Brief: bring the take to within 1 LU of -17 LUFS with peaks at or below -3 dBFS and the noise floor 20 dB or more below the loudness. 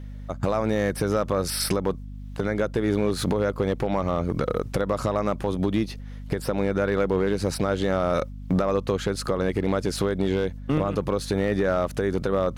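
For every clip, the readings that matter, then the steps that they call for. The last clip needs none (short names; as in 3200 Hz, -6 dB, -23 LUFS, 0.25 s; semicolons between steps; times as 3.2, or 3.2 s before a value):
clipped 0.9%; flat tops at -15.0 dBFS; hum 50 Hz; harmonics up to 250 Hz; hum level -35 dBFS; loudness -25.5 LUFS; peak -15.0 dBFS; loudness target -17.0 LUFS
-> clip repair -15 dBFS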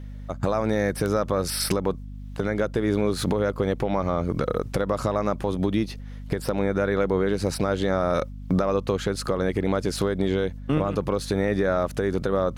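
clipped 0.0%; hum 50 Hz; harmonics up to 250 Hz; hum level -35 dBFS
-> de-hum 50 Hz, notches 5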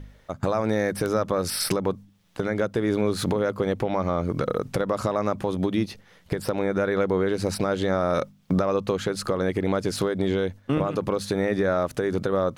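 hum none; loudness -25.5 LUFS; peak -6.5 dBFS; loudness target -17.0 LUFS
-> gain +8.5 dB; limiter -3 dBFS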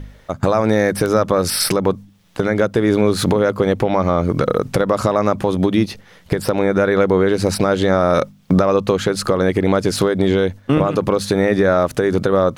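loudness -17.0 LUFS; peak -3.0 dBFS; noise floor -48 dBFS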